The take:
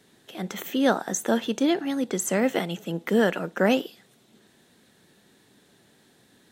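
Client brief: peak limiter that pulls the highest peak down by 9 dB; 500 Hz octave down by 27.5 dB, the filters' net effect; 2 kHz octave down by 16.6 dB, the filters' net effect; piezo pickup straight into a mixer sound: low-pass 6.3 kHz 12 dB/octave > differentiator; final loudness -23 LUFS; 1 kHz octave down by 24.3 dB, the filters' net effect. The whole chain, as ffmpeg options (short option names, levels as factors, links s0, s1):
-af "equalizer=f=500:t=o:g=-3.5,equalizer=f=1000:t=o:g=-7,equalizer=f=2000:t=o:g=-4,alimiter=limit=0.0891:level=0:latency=1,lowpass=6300,aderivative,volume=11.9"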